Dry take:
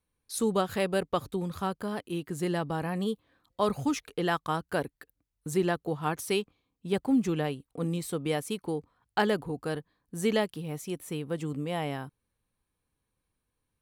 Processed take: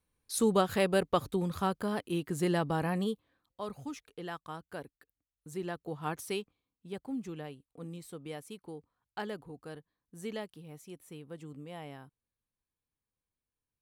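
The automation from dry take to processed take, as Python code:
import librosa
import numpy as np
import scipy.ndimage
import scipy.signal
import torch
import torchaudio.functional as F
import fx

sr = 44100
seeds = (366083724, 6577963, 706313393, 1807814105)

y = fx.gain(x, sr, db=fx.line((2.92, 0.5), (3.62, -12.5), (5.48, -12.5), (6.12, -5.0), (6.95, -12.5)))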